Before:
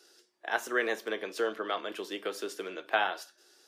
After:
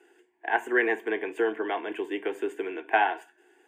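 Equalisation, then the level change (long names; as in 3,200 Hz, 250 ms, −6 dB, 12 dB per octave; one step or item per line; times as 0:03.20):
moving average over 8 samples
phaser with its sweep stopped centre 840 Hz, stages 8
+8.5 dB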